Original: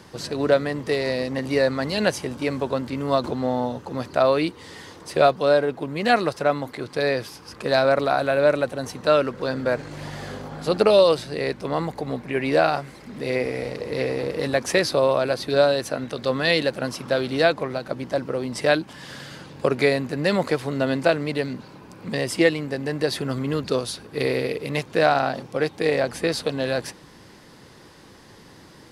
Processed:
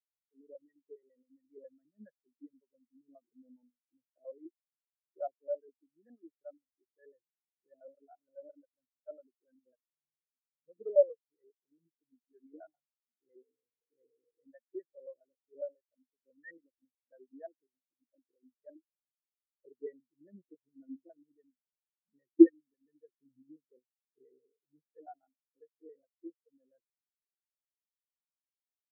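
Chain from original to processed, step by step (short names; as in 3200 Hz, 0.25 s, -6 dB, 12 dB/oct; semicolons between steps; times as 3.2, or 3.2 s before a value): echo 94 ms -21.5 dB; LFO low-pass square 7.3 Hz 340–1900 Hz; spectral expander 4:1; gain -5 dB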